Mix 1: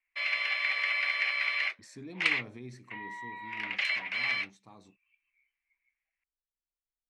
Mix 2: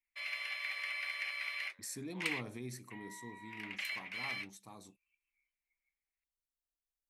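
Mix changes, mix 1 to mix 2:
background −11.5 dB
master: remove high-frequency loss of the air 120 metres

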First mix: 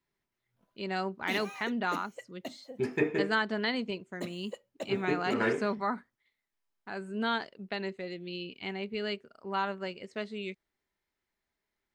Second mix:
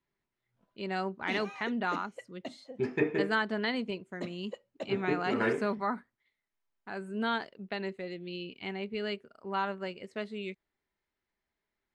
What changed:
first voice: remove low-pass filter 6,600 Hz 24 dB per octave
master: add high-frequency loss of the air 100 metres

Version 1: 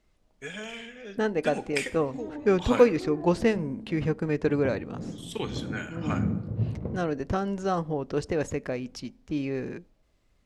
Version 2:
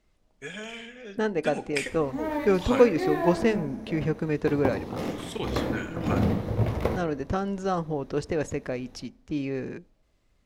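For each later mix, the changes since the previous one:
background: remove resonant band-pass 150 Hz, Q 1.3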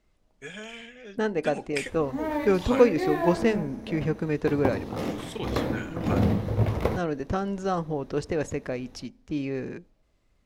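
background +3.5 dB
reverb: off

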